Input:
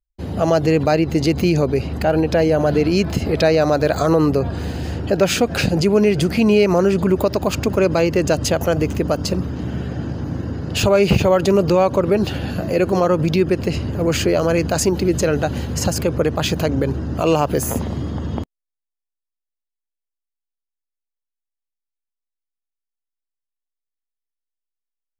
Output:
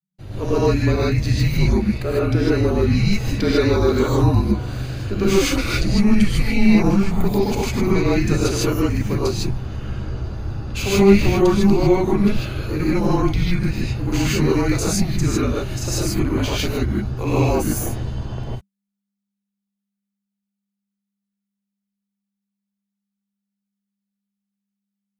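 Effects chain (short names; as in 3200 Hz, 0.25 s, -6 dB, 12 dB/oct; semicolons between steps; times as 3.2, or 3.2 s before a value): non-linear reverb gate 0.18 s rising, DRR -7 dB; frequency shift -200 Hz; gain -8.5 dB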